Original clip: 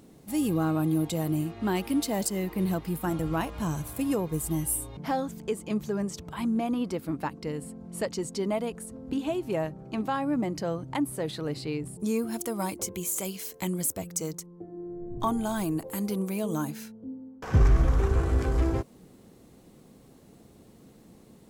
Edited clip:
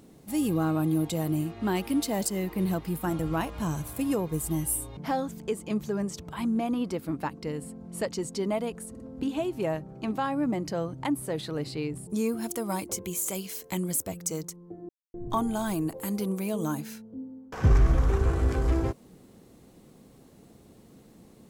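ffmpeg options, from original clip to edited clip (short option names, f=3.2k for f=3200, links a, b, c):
-filter_complex "[0:a]asplit=5[a][b][c][d][e];[a]atrim=end=8.952[f];[b]atrim=start=8.898:end=8.952[g];[c]atrim=start=8.898:end=14.79,asetpts=PTS-STARTPTS,afade=t=out:st=5.888:d=0.004:c=hsin[h];[d]atrim=start=14.79:end=15.04,asetpts=PTS-STARTPTS,volume=0[i];[e]atrim=start=15.04,asetpts=PTS-STARTPTS,afade=t=in:d=0.004:c=hsin[j];[f][g]acrossfade=d=0.004:c1=hsin:c2=hsin[k];[h][i][j]concat=n=3:v=0:a=1[l];[k][l]acrossfade=d=0.004:c1=hsin:c2=hsin"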